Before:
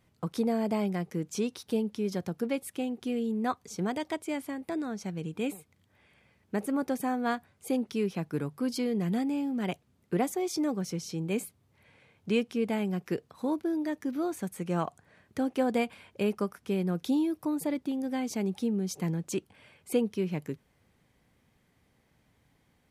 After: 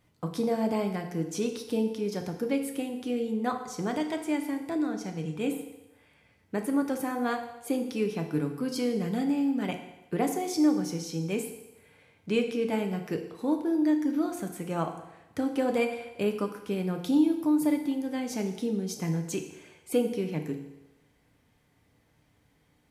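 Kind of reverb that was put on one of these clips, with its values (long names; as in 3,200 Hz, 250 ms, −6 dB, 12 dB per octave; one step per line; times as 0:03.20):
feedback delay network reverb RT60 0.99 s, low-frequency decay 0.8×, high-frequency decay 0.95×, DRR 4 dB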